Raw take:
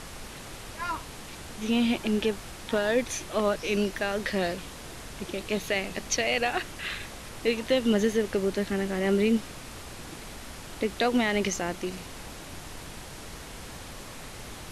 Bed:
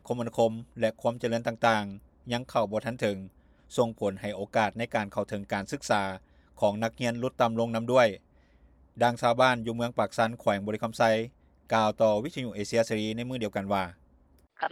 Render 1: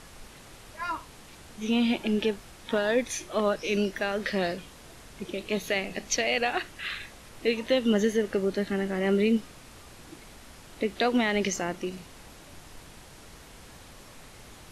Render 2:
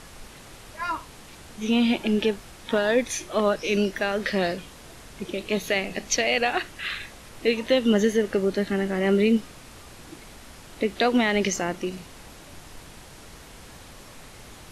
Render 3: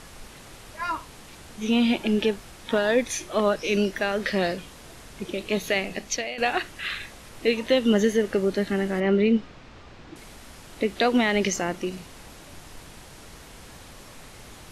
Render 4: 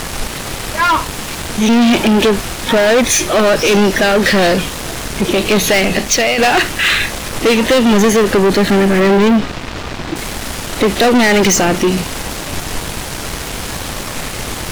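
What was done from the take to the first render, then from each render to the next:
noise print and reduce 7 dB
trim +3.5 dB
5.73–6.38 s: fade out equal-power, to -15.5 dB; 9.00–10.16 s: distance through air 160 m
waveshaping leveller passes 5; in parallel at +2 dB: peak limiter -20.5 dBFS, peak gain reduction 11 dB

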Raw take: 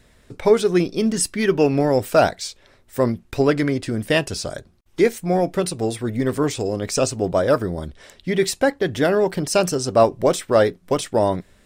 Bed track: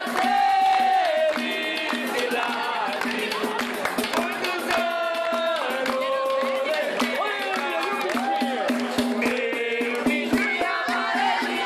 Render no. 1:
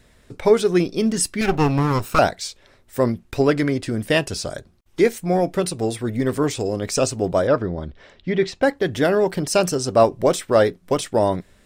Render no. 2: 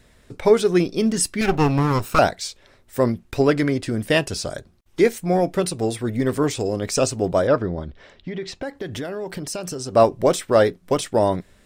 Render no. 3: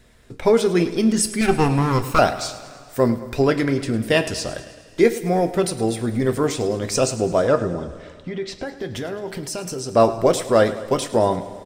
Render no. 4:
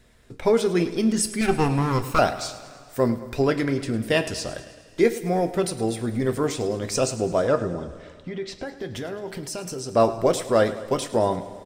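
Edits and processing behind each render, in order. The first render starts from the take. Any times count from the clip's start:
1.41–2.19 s: comb filter that takes the minimum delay 0.74 ms; 7.47–8.63 s: distance through air 170 m
7.82–9.95 s: compression, threshold -26 dBFS
feedback delay 106 ms, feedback 59%, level -15.5 dB; two-slope reverb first 0.24 s, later 2.5 s, from -17 dB, DRR 8.5 dB
trim -3.5 dB

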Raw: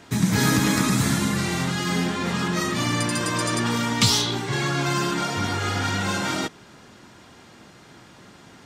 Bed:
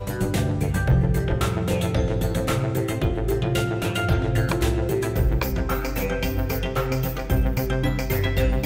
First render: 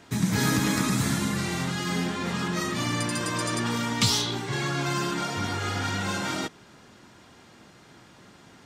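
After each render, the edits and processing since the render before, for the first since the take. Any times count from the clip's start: trim -4 dB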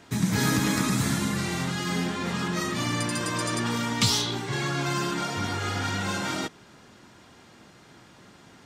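no audible change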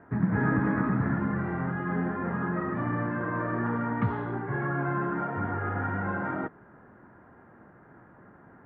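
elliptic low-pass 1.7 kHz, stop band 80 dB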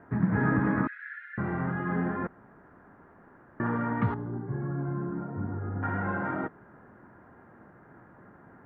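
0.87–1.38 s: steep high-pass 1.5 kHz 96 dB/octave; 2.27–3.60 s: room tone; 4.14–5.83 s: FFT filter 240 Hz 0 dB, 670 Hz -10 dB, 1.3 kHz -13 dB, 2.7 kHz -22 dB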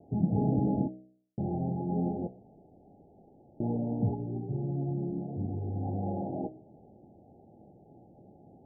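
Chebyshev low-pass 840 Hz, order 10; de-hum 62.99 Hz, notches 12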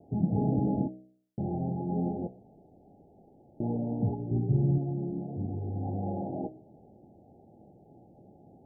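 4.31–4.78 s: tilt EQ -3 dB/octave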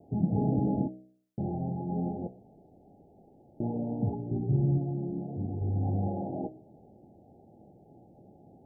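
1.51–2.26 s: peaking EQ 350 Hz -3 dB 1.5 oct; 3.68–5.09 s: hum notches 60/120/180/240/300/360/420/480/540 Hz; 5.61–6.08 s: bass shelf 130 Hz +8.5 dB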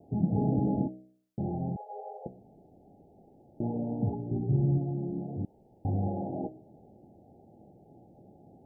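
1.76–2.26 s: brick-wall FIR high-pass 410 Hz; 5.45–5.85 s: room tone

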